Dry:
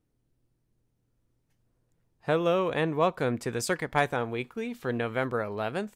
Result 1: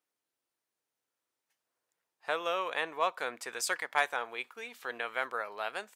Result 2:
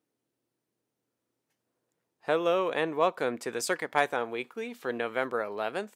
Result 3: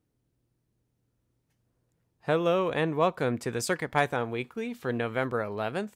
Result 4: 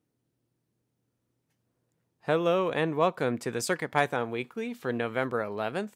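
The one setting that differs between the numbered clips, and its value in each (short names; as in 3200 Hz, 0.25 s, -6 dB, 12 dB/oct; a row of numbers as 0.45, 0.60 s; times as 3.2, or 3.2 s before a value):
HPF, cutoff: 880, 320, 47, 130 Hz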